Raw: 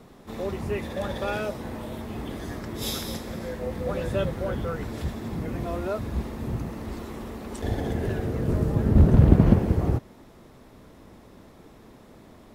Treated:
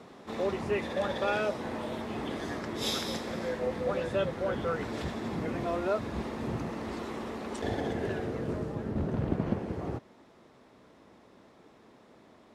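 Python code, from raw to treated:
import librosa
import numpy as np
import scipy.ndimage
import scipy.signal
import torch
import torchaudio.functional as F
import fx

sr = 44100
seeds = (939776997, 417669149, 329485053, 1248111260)

y = fx.rider(x, sr, range_db=5, speed_s=0.5)
y = fx.highpass(y, sr, hz=320.0, slope=6)
y = fx.air_absorb(y, sr, metres=60.0)
y = y * 10.0 ** (-2.0 / 20.0)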